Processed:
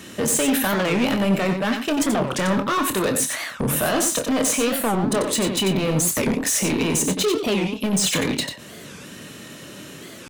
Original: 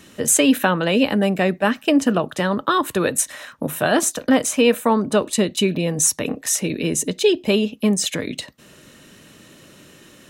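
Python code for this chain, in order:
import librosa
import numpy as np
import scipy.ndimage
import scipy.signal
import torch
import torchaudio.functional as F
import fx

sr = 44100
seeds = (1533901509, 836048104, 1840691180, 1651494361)

p1 = scipy.signal.sosfilt(scipy.signal.butter(2, 75.0, 'highpass', fs=sr, output='sos'), x)
p2 = fx.over_compress(p1, sr, threshold_db=-24.0, ratio=-1.0)
p3 = p1 + (p2 * 10.0 ** (3.0 / 20.0))
p4 = np.clip(p3, -10.0 ** (-14.0 / 20.0), 10.0 ** (-14.0 / 20.0))
p5 = fx.doubler(p4, sr, ms=26.0, db=-9.0)
p6 = p5 + fx.echo_single(p5, sr, ms=92, db=-7.0, dry=0)
p7 = fx.record_warp(p6, sr, rpm=45.0, depth_cents=250.0)
y = p7 * 10.0 ** (-4.5 / 20.0)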